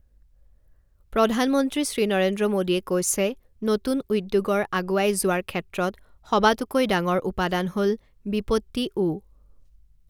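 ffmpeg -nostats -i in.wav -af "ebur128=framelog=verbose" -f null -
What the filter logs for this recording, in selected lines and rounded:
Integrated loudness:
  I:         -24.2 LUFS
  Threshold: -34.9 LUFS
Loudness range:
  LRA:         1.8 LU
  Threshold: -44.4 LUFS
  LRA low:   -25.6 LUFS
  LRA high:  -23.8 LUFS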